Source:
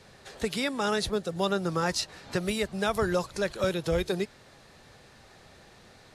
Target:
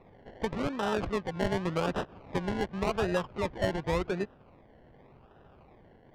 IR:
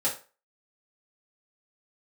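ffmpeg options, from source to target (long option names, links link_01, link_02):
-af "acrusher=samples=28:mix=1:aa=0.000001:lfo=1:lforange=16.8:lforate=0.88,lowpass=3600,adynamicsmooth=sensitivity=5:basefreq=2700,volume=-2dB"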